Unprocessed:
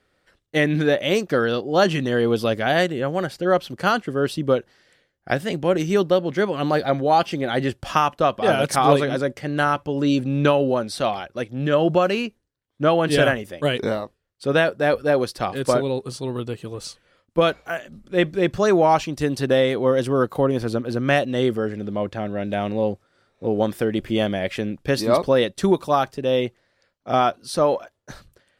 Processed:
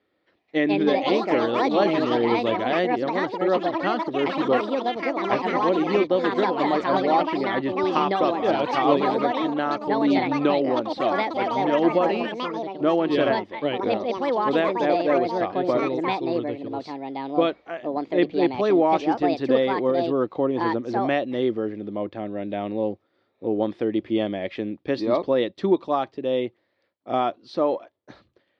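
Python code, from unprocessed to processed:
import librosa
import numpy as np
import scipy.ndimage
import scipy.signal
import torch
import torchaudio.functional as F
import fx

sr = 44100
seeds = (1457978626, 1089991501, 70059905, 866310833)

y = fx.echo_pitch(x, sr, ms=281, semitones=5, count=3, db_per_echo=-3.0)
y = fx.cabinet(y, sr, low_hz=130.0, low_slope=12, high_hz=3900.0, hz=(150.0, 320.0, 1500.0, 2800.0), db=(-9, 7, -8, -4))
y = F.gain(torch.from_numpy(y), -4.0).numpy()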